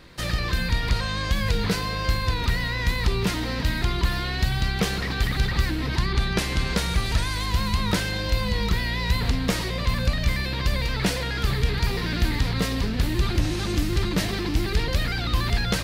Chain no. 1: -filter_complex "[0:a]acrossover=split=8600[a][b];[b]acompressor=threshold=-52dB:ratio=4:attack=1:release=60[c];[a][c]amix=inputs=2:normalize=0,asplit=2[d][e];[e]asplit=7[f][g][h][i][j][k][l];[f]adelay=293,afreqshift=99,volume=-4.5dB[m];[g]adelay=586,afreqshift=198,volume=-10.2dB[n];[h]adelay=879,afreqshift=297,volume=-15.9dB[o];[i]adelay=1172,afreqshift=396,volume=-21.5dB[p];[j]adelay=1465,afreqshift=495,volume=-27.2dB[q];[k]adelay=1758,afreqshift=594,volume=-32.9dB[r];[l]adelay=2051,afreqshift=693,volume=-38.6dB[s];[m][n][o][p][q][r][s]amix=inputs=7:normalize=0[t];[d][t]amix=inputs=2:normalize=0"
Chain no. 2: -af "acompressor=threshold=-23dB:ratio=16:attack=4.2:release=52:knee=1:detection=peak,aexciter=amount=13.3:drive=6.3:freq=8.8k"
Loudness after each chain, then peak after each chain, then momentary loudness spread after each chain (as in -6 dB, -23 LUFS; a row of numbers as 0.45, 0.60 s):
-23.0, -23.0 LUFS; -9.0, -4.5 dBFS; 1, 4 LU